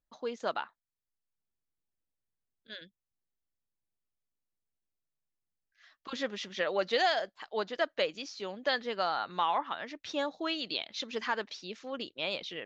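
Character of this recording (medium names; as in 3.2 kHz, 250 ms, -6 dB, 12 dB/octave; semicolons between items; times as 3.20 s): noise floor -90 dBFS; spectral tilt 0.0 dB/octave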